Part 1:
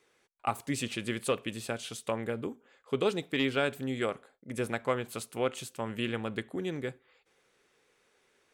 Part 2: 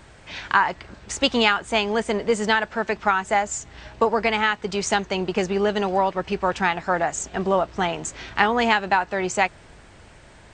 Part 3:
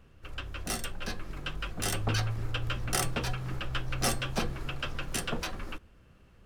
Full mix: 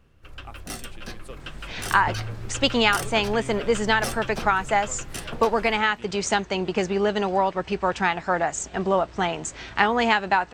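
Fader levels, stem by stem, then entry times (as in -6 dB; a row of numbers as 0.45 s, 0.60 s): -13.5 dB, -1.0 dB, -1.5 dB; 0.00 s, 1.40 s, 0.00 s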